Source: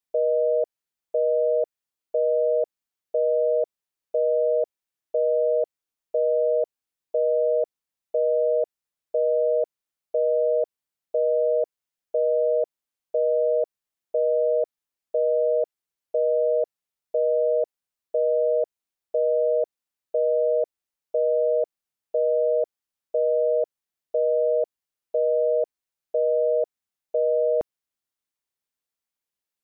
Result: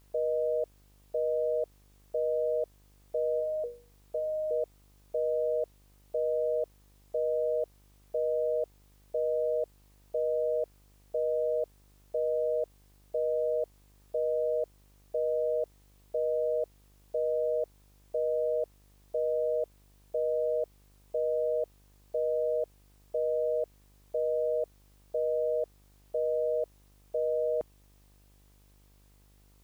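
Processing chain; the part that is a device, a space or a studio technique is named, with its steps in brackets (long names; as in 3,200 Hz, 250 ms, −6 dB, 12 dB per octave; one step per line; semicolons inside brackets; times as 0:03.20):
0:03.39–0:04.51: mains-hum notches 60/120/180/240/300/360/420/480/540/600 Hz
video cassette with head-switching buzz (hum with harmonics 50 Hz, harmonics 25, −54 dBFS −7 dB per octave; white noise bed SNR 37 dB)
level −7.5 dB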